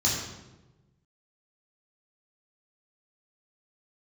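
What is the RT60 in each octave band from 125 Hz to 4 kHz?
1.7, 1.4, 1.3, 0.95, 0.85, 0.75 s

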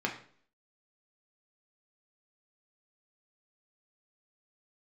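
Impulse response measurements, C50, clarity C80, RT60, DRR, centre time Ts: 9.5 dB, 13.0 dB, 0.50 s, 0.0 dB, 19 ms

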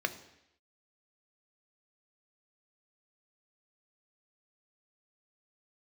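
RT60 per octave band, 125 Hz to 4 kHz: 0.75, 0.80, 0.80, 0.80, 0.90, 0.90 s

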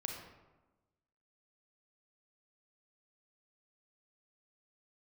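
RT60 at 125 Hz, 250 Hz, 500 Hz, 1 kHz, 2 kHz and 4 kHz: 1.3, 1.3, 1.2, 1.1, 0.85, 0.60 s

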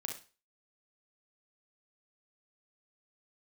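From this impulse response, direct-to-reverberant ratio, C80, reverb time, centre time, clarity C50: 1.5 dB, 14.0 dB, 0.35 s, 23 ms, 6.0 dB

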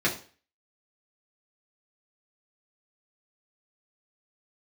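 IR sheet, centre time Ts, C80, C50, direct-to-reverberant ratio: 21 ms, 16.0 dB, 11.0 dB, -5.5 dB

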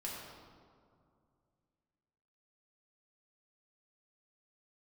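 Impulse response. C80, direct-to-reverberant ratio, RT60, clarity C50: 1.5 dB, -5.0 dB, 2.3 s, 0.0 dB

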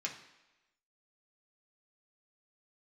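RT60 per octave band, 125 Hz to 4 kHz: 0.75, 0.95, 1.0, 1.0, 1.1, 1.0 s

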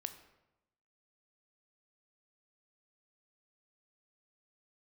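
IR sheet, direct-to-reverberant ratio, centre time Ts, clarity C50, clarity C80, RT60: 8.5 dB, 11 ms, 11.5 dB, 13.0 dB, 0.95 s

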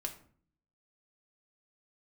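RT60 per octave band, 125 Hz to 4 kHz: 0.85, 0.80, 0.55, 0.45, 0.40, 0.30 s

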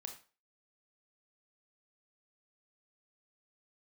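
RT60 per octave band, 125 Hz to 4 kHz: 0.30, 0.30, 0.35, 0.35, 0.35, 0.30 s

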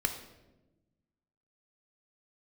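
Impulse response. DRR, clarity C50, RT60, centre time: 5.5 dB, 8.5 dB, 1.1 s, 18 ms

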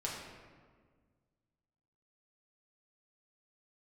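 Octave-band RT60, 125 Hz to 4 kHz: 2.3, 2.1, 1.8, 1.5, 1.3, 0.95 s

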